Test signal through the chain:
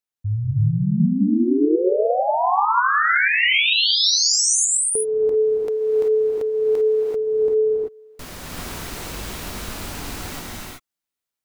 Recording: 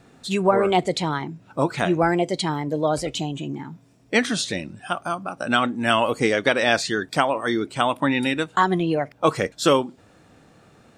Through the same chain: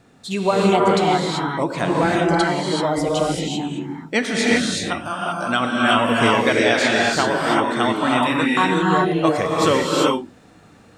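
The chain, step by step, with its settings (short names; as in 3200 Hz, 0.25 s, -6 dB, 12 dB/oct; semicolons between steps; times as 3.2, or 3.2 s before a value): non-linear reverb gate 0.41 s rising, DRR -3.5 dB; gain -1 dB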